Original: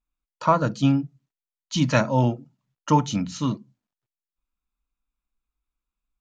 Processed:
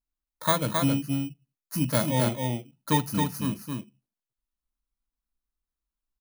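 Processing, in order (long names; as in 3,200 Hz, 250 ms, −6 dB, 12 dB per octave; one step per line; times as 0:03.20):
samples in bit-reversed order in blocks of 16 samples
single-tap delay 268 ms −4 dB
level −5 dB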